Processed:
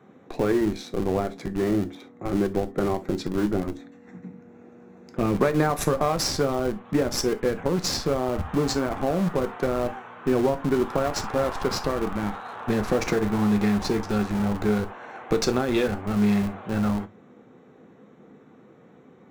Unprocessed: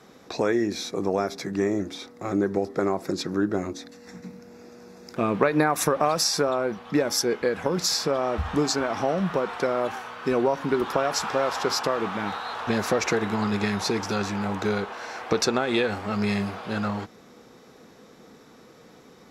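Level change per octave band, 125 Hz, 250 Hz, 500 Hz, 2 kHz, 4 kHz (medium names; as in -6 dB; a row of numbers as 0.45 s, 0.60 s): +4.0 dB, +2.5 dB, 0.0 dB, -3.5 dB, -3.5 dB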